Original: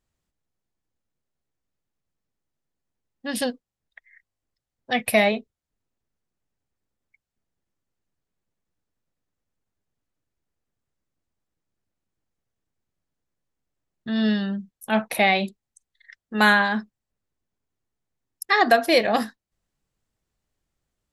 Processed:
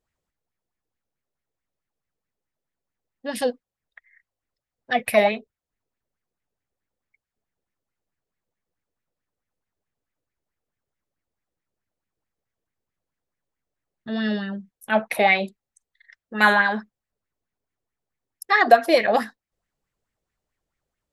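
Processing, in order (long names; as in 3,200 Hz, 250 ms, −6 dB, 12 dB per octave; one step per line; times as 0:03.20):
auto-filter bell 4.6 Hz 440–2,200 Hz +12 dB
level −4 dB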